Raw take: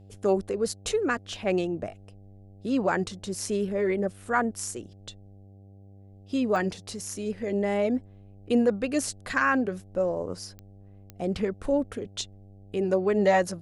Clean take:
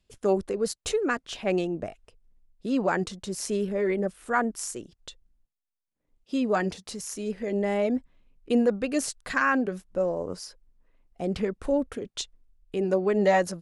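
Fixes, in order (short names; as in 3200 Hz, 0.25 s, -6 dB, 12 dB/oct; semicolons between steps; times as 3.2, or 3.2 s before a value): de-click; de-hum 98.4 Hz, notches 8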